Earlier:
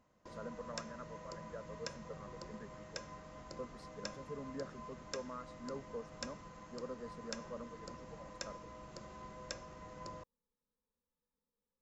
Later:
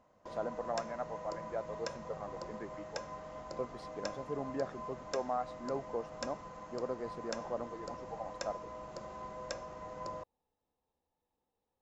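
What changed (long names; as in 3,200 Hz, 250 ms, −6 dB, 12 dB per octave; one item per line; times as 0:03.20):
speech: remove phaser with its sweep stopped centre 500 Hz, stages 8
master: add parametric band 710 Hz +9.5 dB 1.5 octaves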